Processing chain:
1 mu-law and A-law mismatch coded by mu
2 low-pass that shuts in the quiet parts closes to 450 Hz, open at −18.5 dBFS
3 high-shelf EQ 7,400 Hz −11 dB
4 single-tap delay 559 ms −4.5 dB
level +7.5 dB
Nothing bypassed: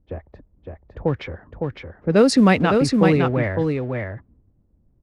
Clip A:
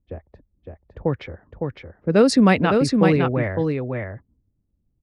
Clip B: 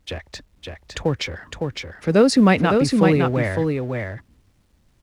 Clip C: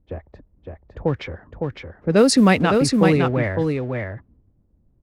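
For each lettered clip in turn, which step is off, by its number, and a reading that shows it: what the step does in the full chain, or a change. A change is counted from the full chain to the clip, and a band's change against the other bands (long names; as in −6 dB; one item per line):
1, distortion level −24 dB
2, 4 kHz band +2.0 dB
3, 8 kHz band +5.5 dB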